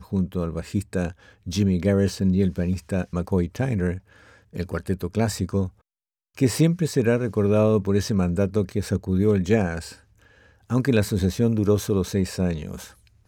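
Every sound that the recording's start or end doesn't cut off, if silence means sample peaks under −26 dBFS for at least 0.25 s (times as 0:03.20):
0:01.48–0:03.96
0:04.56–0:05.67
0:06.38–0:09.79
0:10.71–0:12.75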